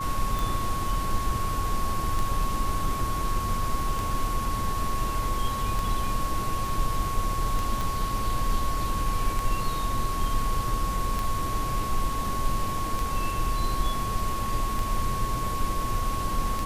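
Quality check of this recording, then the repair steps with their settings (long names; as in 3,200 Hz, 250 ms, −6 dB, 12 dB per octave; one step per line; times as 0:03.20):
scratch tick 33 1/3 rpm
whistle 1,100 Hz −30 dBFS
0:07.81: click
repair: click removal
notch filter 1,100 Hz, Q 30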